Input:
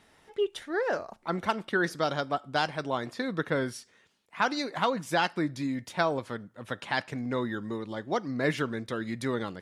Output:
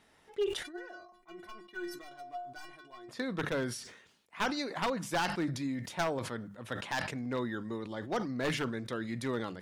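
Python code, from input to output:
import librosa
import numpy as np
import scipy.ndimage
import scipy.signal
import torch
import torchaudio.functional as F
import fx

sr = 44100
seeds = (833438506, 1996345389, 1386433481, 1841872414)

y = np.minimum(x, 2.0 * 10.0 ** (-21.0 / 20.0) - x)
y = fx.hum_notches(y, sr, base_hz=50, count=4)
y = fx.stiff_resonator(y, sr, f0_hz=350.0, decay_s=0.24, stiffness=0.008, at=(0.62, 3.08), fade=0.02)
y = fx.sustainer(y, sr, db_per_s=71.0)
y = y * 10.0 ** (-4.0 / 20.0)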